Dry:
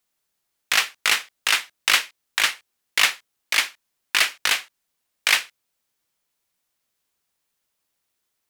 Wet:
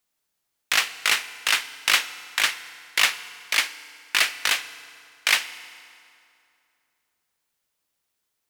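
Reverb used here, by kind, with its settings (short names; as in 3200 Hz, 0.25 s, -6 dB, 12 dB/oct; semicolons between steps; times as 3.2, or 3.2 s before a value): FDN reverb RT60 2.6 s, high-frequency decay 0.75×, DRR 13 dB; gain -1.5 dB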